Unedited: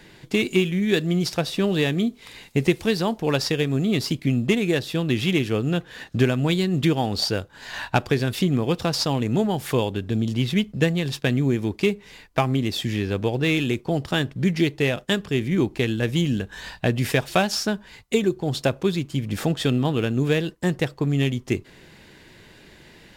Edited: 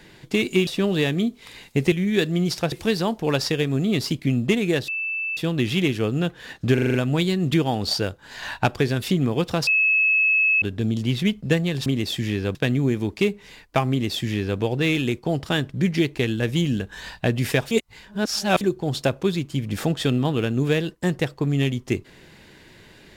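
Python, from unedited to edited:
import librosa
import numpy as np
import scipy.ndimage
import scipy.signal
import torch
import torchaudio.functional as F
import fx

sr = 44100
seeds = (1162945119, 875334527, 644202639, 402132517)

y = fx.edit(x, sr, fx.move(start_s=0.67, length_s=0.8, to_s=2.72),
    fx.insert_tone(at_s=4.88, length_s=0.49, hz=2640.0, db=-24.0),
    fx.stutter(start_s=6.25, slice_s=0.04, count=6),
    fx.bleep(start_s=8.98, length_s=0.95, hz=2590.0, db=-15.5),
    fx.duplicate(start_s=12.52, length_s=0.69, to_s=11.17),
    fx.cut(start_s=14.77, length_s=0.98),
    fx.reverse_span(start_s=17.31, length_s=0.9), tone=tone)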